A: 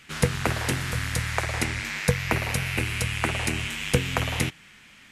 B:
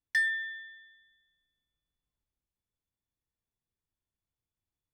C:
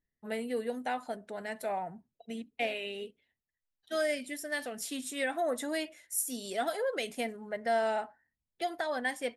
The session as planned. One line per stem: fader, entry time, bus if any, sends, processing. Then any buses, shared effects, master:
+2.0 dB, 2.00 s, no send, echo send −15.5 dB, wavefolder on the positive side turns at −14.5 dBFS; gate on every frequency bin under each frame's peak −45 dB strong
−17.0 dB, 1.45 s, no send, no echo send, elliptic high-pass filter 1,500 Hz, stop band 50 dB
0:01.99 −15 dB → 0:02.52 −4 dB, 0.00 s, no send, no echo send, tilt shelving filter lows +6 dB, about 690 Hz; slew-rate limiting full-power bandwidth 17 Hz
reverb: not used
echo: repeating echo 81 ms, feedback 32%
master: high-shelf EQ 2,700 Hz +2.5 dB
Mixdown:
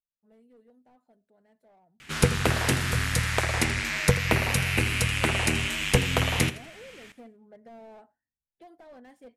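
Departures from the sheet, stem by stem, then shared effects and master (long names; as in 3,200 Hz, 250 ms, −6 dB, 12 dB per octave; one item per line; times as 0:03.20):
stem B: muted
stem C −15.0 dB → −25.5 dB
master: missing high-shelf EQ 2,700 Hz +2.5 dB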